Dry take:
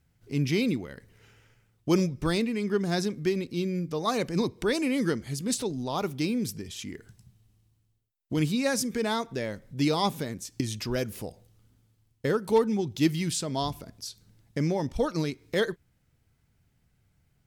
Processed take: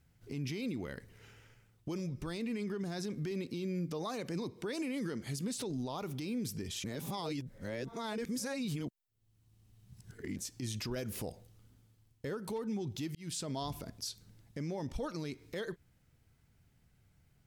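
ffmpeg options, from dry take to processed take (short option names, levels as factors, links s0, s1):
-filter_complex "[0:a]asettb=1/sr,asplit=3[s0][s1][s2];[s0]atrim=end=3.314[s3];[s1]atrim=start=3.31:end=5.64,asetpts=PTS-STARTPTS,afade=t=in:d=0.004:c=qsin,afade=t=out:st=2.326:d=0.004:c=qsin,highpass=110[s4];[s2]atrim=start=5.636[s5];[s3][s4]acrossfade=d=0.004:c1=hsin:c2=qsin[s6];[s6][s5]acrossfade=d=0.004:c1=qsin:c2=hsin,asplit=4[s7][s8][s9][s10];[s7]atrim=end=6.842[s11];[s8]atrim=start=6.838:end=10.362,asetpts=PTS-STARTPTS,areverse[s12];[s9]atrim=start=10.358:end=13.15,asetpts=PTS-STARTPTS,afade=t=out:st=2.788:d=0.004:c=hsin[s13];[s10]atrim=start=13.15,asetpts=PTS-STARTPTS,afade=t=in:d=0.48[s14];[s11][s12]acrossfade=d=0.004:c1=hsin:c2=hsin[s15];[s13][s14]concat=n=2:v=0:a=1[s16];[s15][s16]acrossfade=d=0.004:c1=hsin:c2=hsin,acompressor=threshold=0.0355:ratio=6,alimiter=level_in=2:limit=0.0631:level=0:latency=1:release=41,volume=0.501"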